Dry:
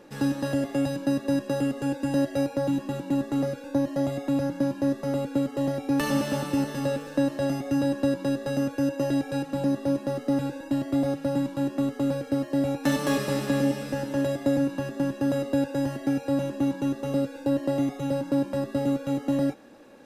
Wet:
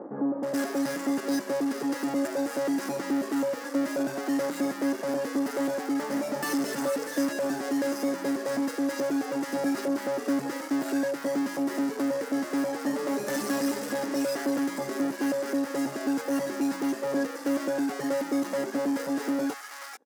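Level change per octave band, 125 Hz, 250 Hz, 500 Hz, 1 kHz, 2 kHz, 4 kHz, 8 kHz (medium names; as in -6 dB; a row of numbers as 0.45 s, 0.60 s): -16.5 dB, -2.5 dB, -1.5 dB, +1.0 dB, +2.5 dB, 0.0 dB, +4.5 dB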